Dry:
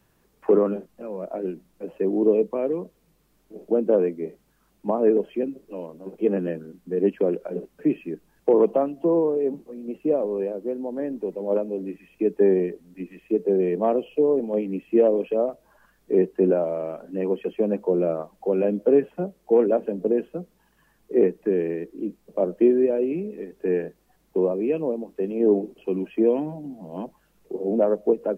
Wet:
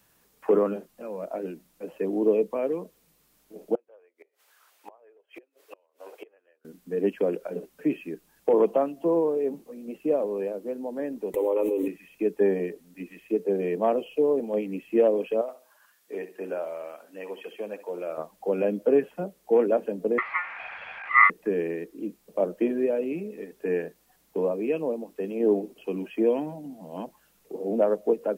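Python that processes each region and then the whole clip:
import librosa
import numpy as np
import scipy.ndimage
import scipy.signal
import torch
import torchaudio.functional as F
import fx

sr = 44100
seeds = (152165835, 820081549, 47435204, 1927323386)

y = fx.chain(x, sr, fx.highpass(hz=460.0, slope=24),
    fx.peak_eq(hz=1800.0, db=7.0, octaves=2.6),
    fx.gate_flip(shuts_db=-28.0, range_db=-33), at=(3.75, 6.65))
y = fx.chain(y, sr, fx.fixed_phaser(hz=1000.0, stages=8),
    fx.env_flatten(amount_pct=100), at=(11.34, 11.88))
y = fx.chain(y, sr, fx.highpass(hz=1200.0, slope=6),
    fx.echo_feedback(ms=66, feedback_pct=29, wet_db=-13), at=(15.41, 18.18))
y = fx.chain(y, sr, fx.zero_step(step_db=-32.5),
    fx.lowpass_res(hz=800.0, q=3.2),
    fx.ring_mod(carrier_hz=1600.0), at=(20.18, 21.3))
y = fx.tilt_eq(y, sr, slope=2.0)
y = fx.notch(y, sr, hz=370.0, q=12.0)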